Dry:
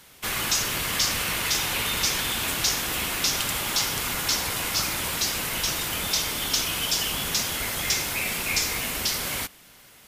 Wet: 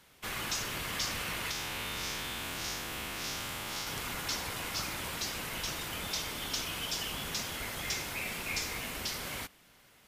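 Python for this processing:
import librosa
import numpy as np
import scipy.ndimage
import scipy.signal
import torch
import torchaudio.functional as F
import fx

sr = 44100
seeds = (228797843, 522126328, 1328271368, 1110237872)

y = fx.spec_blur(x, sr, span_ms=122.0, at=(1.51, 3.87))
y = fx.high_shelf(y, sr, hz=4700.0, db=-6.5)
y = y * 10.0 ** (-7.5 / 20.0)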